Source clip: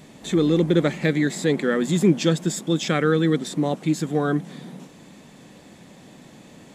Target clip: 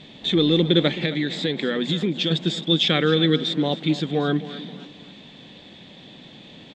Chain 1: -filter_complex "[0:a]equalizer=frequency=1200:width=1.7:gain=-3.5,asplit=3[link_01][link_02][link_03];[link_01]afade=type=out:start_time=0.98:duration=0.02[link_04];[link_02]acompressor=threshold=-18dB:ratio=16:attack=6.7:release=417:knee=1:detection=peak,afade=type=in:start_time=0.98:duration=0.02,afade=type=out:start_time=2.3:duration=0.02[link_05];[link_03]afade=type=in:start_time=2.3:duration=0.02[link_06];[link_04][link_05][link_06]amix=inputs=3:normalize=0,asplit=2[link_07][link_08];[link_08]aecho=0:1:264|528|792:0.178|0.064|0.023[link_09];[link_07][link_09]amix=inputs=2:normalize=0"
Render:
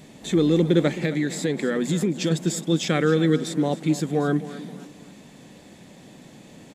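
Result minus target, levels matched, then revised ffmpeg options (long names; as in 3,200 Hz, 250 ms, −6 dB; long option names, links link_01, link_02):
4,000 Hz band −10.0 dB
-filter_complex "[0:a]lowpass=frequency=3500:width_type=q:width=4.8,equalizer=frequency=1200:width=1.7:gain=-3.5,asplit=3[link_01][link_02][link_03];[link_01]afade=type=out:start_time=0.98:duration=0.02[link_04];[link_02]acompressor=threshold=-18dB:ratio=16:attack=6.7:release=417:knee=1:detection=peak,afade=type=in:start_time=0.98:duration=0.02,afade=type=out:start_time=2.3:duration=0.02[link_05];[link_03]afade=type=in:start_time=2.3:duration=0.02[link_06];[link_04][link_05][link_06]amix=inputs=3:normalize=0,asplit=2[link_07][link_08];[link_08]aecho=0:1:264|528|792:0.178|0.064|0.023[link_09];[link_07][link_09]amix=inputs=2:normalize=0"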